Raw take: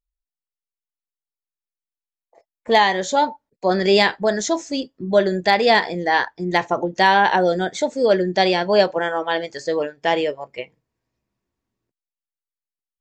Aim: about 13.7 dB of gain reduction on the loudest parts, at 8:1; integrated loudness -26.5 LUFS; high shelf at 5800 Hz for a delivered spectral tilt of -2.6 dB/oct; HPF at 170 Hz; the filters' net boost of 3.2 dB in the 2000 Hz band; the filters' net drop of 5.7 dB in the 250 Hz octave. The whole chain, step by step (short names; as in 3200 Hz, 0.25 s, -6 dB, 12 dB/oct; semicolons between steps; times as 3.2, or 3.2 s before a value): HPF 170 Hz; bell 250 Hz -8 dB; bell 2000 Hz +3.5 dB; high shelf 5800 Hz +3 dB; compressor 8:1, threshold -24 dBFS; gain +2.5 dB